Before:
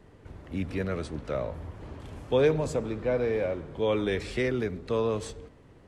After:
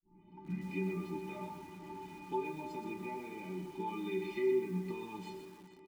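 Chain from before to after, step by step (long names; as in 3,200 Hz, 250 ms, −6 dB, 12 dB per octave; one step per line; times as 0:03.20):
turntable start at the beginning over 0.76 s
high-shelf EQ 2,800 Hz +9 dB
in parallel at +2 dB: brickwall limiter −23 dBFS, peak gain reduction 11 dB
on the sum: downward compressor 8 to 1, threshold −23 dBFS, peak gain reduction 9 dB
formant filter u
bass and treble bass +4 dB, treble −4 dB
stiff-string resonator 180 Hz, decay 0.48 s, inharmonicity 0.03
on a send: repeating echo 444 ms, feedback 40%, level −16 dB
on the sum: treble cut that deepens with the level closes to 2,100 Hz, closed at −49.5 dBFS
feedback echo at a low word length 125 ms, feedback 35%, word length 12 bits, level −7 dB
level +17.5 dB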